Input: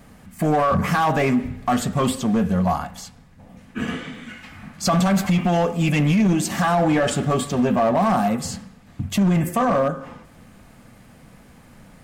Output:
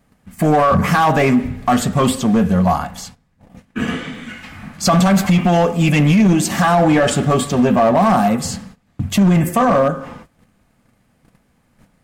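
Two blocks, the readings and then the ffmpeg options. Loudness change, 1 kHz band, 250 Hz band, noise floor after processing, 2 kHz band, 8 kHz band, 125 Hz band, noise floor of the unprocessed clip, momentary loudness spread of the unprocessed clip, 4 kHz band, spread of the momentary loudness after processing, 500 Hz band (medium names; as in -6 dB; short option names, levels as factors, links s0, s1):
+5.5 dB, +5.5 dB, +5.5 dB, -60 dBFS, +5.5 dB, +5.5 dB, +5.5 dB, -49 dBFS, 16 LU, +5.5 dB, 16 LU, +5.5 dB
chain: -af "agate=range=0.141:threshold=0.00708:ratio=16:detection=peak,volume=1.88"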